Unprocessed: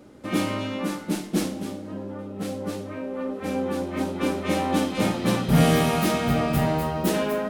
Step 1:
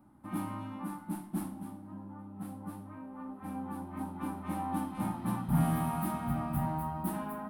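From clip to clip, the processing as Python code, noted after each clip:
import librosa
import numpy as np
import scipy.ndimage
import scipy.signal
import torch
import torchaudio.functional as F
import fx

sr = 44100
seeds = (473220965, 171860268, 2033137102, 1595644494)

y = fx.curve_eq(x, sr, hz=(200.0, 320.0, 460.0, 870.0, 2300.0, 6700.0, 9800.0), db=(0, -4, -22, 5, -13, -20, 0))
y = y * 10.0 ** (-9.0 / 20.0)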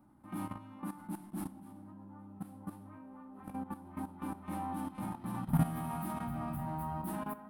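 y = fx.level_steps(x, sr, step_db=13)
y = y * 10.0 ** (1.0 / 20.0)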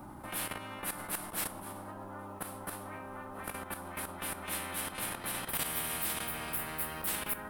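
y = fx.spectral_comp(x, sr, ratio=10.0)
y = y * 10.0 ** (-3.5 / 20.0)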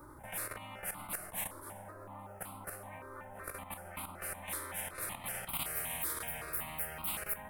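y = fx.phaser_held(x, sr, hz=5.3, low_hz=750.0, high_hz=1700.0)
y = y * 10.0 ** (-1.0 / 20.0)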